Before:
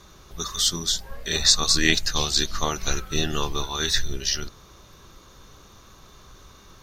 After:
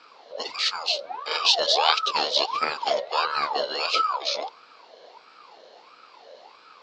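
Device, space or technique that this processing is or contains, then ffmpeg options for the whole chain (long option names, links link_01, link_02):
voice changer toy: -af "aeval=exprs='val(0)*sin(2*PI*940*n/s+940*0.4/1.5*sin(2*PI*1.5*n/s))':channel_layout=same,highpass=400,equalizer=frequency=470:width_type=q:width=4:gain=9,equalizer=frequency=1900:width_type=q:width=4:gain=-6,equalizer=frequency=4100:width_type=q:width=4:gain=7,lowpass=frequency=4600:width=0.5412,lowpass=frequency=4600:width=1.3066,volume=1.5dB"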